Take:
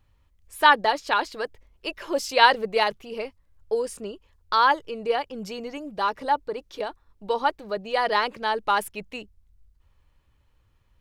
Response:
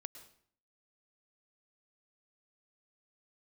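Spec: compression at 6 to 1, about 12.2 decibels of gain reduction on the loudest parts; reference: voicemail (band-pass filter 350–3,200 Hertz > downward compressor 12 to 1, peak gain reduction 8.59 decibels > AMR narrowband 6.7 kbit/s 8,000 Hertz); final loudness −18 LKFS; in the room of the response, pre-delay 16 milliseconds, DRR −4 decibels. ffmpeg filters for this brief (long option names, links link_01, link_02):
-filter_complex "[0:a]acompressor=threshold=-24dB:ratio=6,asplit=2[link_01][link_02];[1:a]atrim=start_sample=2205,adelay=16[link_03];[link_02][link_03]afir=irnorm=-1:irlink=0,volume=8.5dB[link_04];[link_01][link_04]amix=inputs=2:normalize=0,highpass=350,lowpass=3200,acompressor=threshold=-23dB:ratio=12,volume=13.5dB" -ar 8000 -c:a libopencore_amrnb -b:a 6700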